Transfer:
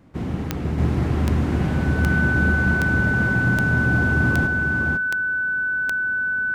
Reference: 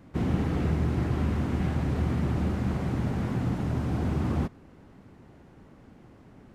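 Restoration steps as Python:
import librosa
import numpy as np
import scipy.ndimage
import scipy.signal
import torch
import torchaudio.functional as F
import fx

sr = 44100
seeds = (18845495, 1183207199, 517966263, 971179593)

y = fx.fix_declick_ar(x, sr, threshold=10.0)
y = fx.notch(y, sr, hz=1500.0, q=30.0)
y = fx.fix_echo_inverse(y, sr, delay_ms=499, level_db=-4.0)
y = fx.fix_level(y, sr, at_s=0.78, step_db=-5.0)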